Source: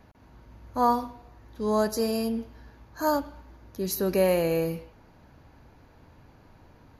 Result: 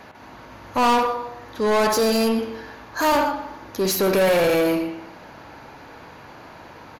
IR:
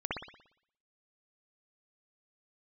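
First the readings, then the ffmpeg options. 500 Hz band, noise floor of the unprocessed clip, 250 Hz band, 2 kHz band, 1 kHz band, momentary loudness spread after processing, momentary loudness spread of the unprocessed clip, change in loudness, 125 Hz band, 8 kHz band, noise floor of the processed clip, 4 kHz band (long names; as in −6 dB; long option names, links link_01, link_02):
+6.5 dB, −56 dBFS, +5.5 dB, +13.0 dB, +7.5 dB, 15 LU, 17 LU, +6.0 dB, +2.0 dB, +8.5 dB, −44 dBFS, +11.5 dB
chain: -filter_complex "[0:a]asplit=2[link_01][link_02];[link_02]adelay=122.4,volume=-14dB,highshelf=frequency=4000:gain=-2.76[link_03];[link_01][link_03]amix=inputs=2:normalize=0,asplit=2[link_04][link_05];[1:a]atrim=start_sample=2205[link_06];[link_05][link_06]afir=irnorm=-1:irlink=0,volume=-9.5dB[link_07];[link_04][link_07]amix=inputs=2:normalize=0,asplit=2[link_08][link_09];[link_09]highpass=frequency=720:poles=1,volume=27dB,asoftclip=type=tanh:threshold=-6.5dB[link_10];[link_08][link_10]amix=inputs=2:normalize=0,lowpass=frequency=5600:poles=1,volume=-6dB,volume=-4.5dB"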